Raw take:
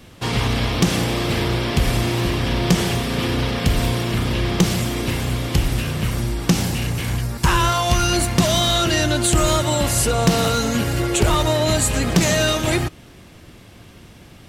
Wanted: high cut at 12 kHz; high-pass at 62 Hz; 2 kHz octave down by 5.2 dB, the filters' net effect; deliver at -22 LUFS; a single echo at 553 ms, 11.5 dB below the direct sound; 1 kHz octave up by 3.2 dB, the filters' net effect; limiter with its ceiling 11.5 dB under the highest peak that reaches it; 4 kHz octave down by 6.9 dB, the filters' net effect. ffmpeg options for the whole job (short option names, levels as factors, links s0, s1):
-af "highpass=62,lowpass=12000,equalizer=f=1000:t=o:g=6.5,equalizer=f=2000:t=o:g=-7.5,equalizer=f=4000:t=o:g=-6.5,alimiter=limit=0.188:level=0:latency=1,aecho=1:1:553:0.266,volume=1.19"